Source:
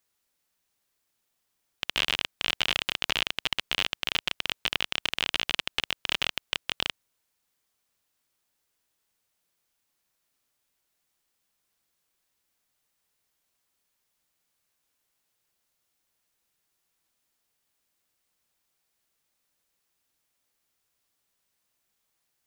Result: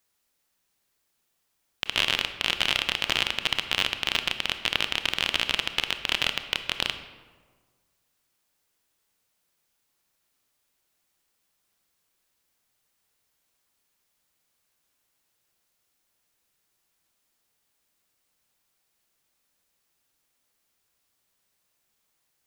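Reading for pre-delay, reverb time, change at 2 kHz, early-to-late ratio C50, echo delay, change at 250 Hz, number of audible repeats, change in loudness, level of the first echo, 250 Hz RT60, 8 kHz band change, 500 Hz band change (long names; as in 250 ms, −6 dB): 25 ms, 1.5 s, +3.0 dB, 10.0 dB, no echo audible, +3.5 dB, no echo audible, +3.0 dB, no echo audible, 1.6 s, +2.5 dB, +3.5 dB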